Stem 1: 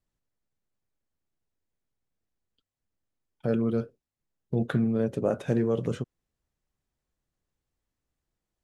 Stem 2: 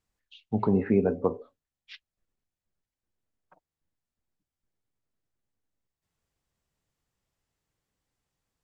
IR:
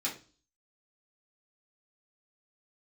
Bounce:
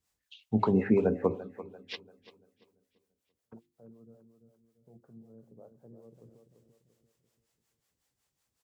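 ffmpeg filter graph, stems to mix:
-filter_complex "[0:a]lowpass=f=1000:w=0.5412,lowpass=f=1000:w=1.3066,volume=0.112,asplit=2[s0][s1];[s1]volume=0.531[s2];[1:a]highshelf=f=3300:g=8,volume=1.33,asplit=3[s3][s4][s5];[s4]volume=0.141[s6];[s5]apad=whole_len=380959[s7];[s0][s7]sidechaingate=range=0.00501:threshold=0.00141:ratio=16:detection=peak[s8];[s2][s6]amix=inputs=2:normalize=0,aecho=0:1:341|682|1023|1364|1705|2046:1|0.41|0.168|0.0689|0.0283|0.0116[s9];[s8][s3][s9]amix=inputs=3:normalize=0,highpass=46,bandreject=f=50:t=h:w=6,bandreject=f=100:t=h:w=6,bandreject=f=150:t=h:w=6,bandreject=f=200:t=h:w=6,bandreject=f=250:t=h:w=6,bandreject=f=300:t=h:w=6,bandreject=f=350:t=h:w=6,acrossover=split=410[s10][s11];[s10]aeval=exprs='val(0)*(1-0.7/2+0.7/2*cos(2*PI*5.4*n/s))':c=same[s12];[s11]aeval=exprs='val(0)*(1-0.7/2-0.7/2*cos(2*PI*5.4*n/s))':c=same[s13];[s12][s13]amix=inputs=2:normalize=0"

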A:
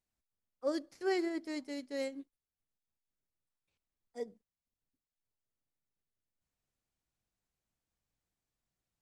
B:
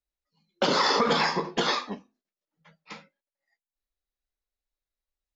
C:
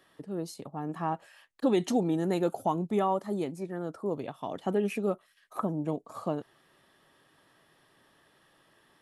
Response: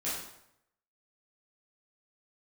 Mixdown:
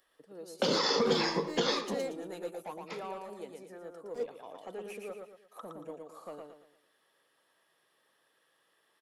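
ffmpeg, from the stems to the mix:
-filter_complex "[0:a]acompressor=mode=upward:threshold=0.00794:ratio=2.5,aeval=exprs='sgn(val(0))*max(abs(val(0))-0.00355,0)':c=same,volume=0.944[s0];[1:a]volume=0.708,asplit=2[s1][s2];[s2]volume=0.1[s3];[2:a]highpass=f=750:p=1,asoftclip=type=tanh:threshold=0.0398,highshelf=f=9100:g=4,volume=0.376,asplit=2[s4][s5];[s5]volume=0.631[s6];[s3][s6]amix=inputs=2:normalize=0,aecho=0:1:115|230|345|460|575:1|0.36|0.13|0.0467|0.0168[s7];[s0][s1][s4][s7]amix=inputs=4:normalize=0,equalizer=f=490:w=5:g=9,acrossover=split=360|3000[s8][s9][s10];[s9]acompressor=threshold=0.0282:ratio=6[s11];[s8][s11][s10]amix=inputs=3:normalize=0"

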